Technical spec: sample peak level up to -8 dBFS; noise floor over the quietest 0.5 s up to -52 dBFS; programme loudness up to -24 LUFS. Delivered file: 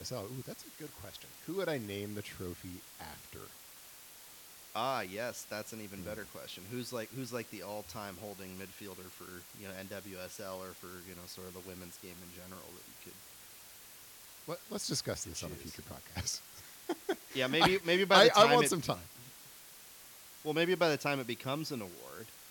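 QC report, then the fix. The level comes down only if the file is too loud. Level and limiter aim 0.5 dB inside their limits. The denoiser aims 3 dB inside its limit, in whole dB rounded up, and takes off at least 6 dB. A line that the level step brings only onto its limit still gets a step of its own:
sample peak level -12.0 dBFS: pass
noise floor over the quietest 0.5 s -54 dBFS: pass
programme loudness -33.5 LUFS: pass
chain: none needed

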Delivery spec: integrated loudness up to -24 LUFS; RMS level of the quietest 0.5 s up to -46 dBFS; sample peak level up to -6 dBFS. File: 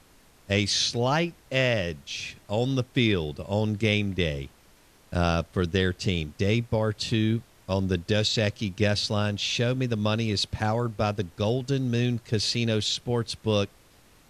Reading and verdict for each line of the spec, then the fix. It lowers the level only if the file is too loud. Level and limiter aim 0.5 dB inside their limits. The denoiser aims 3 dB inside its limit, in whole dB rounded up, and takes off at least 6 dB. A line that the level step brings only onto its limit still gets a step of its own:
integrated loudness -26.5 LUFS: pass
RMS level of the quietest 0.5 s -57 dBFS: pass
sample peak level -8.5 dBFS: pass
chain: none needed

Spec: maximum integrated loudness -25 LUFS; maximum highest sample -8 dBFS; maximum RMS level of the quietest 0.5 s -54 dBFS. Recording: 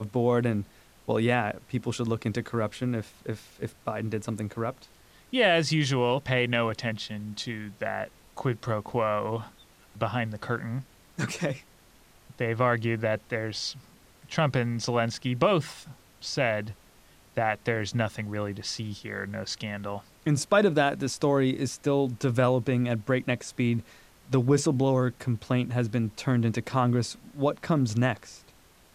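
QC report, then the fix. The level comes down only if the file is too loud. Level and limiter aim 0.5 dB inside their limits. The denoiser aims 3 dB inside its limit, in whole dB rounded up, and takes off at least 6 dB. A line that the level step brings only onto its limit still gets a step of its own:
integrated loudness -28.0 LUFS: pass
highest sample -11.5 dBFS: pass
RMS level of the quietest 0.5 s -57 dBFS: pass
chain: none needed

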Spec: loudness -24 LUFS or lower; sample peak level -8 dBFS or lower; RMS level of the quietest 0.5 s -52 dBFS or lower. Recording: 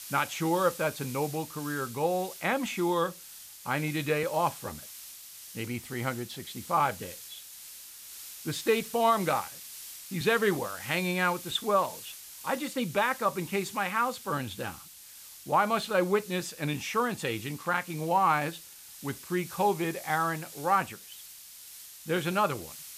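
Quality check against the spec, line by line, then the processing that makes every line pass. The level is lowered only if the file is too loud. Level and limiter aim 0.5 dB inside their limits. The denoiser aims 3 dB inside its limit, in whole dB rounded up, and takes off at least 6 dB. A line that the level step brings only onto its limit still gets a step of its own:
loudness -30.0 LUFS: pass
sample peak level -13.5 dBFS: pass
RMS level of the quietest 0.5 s -49 dBFS: fail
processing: noise reduction 6 dB, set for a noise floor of -49 dBFS

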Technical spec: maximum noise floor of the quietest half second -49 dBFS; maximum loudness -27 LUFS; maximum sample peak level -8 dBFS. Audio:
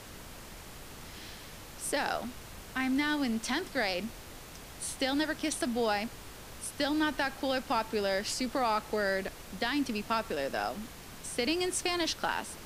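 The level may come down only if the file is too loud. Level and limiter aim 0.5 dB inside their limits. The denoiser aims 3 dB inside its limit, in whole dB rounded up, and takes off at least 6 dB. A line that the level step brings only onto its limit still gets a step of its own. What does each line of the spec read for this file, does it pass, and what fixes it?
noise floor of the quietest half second -47 dBFS: fail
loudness -32.0 LUFS: pass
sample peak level -16.0 dBFS: pass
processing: noise reduction 6 dB, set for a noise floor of -47 dBFS

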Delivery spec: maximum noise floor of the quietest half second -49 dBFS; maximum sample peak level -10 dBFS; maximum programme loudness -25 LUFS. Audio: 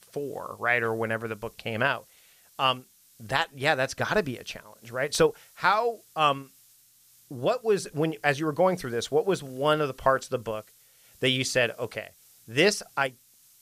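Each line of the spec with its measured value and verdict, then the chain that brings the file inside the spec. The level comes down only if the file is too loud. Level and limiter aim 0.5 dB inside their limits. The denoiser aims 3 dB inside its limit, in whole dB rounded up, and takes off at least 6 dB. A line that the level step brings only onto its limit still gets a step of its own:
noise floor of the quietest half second -59 dBFS: pass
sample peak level -7.5 dBFS: fail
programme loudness -27.0 LUFS: pass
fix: peak limiter -10.5 dBFS

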